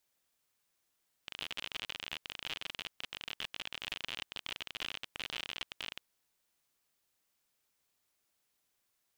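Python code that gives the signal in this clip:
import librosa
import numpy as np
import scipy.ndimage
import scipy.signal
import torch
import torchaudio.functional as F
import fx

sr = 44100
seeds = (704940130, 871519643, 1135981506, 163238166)

y = fx.geiger_clicks(sr, seeds[0], length_s=4.73, per_s=52.0, level_db=-23.0)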